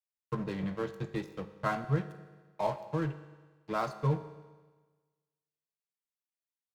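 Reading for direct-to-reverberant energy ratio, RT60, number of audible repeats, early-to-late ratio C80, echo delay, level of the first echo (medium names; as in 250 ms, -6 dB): 10.0 dB, 1.4 s, no echo, 13.0 dB, no echo, no echo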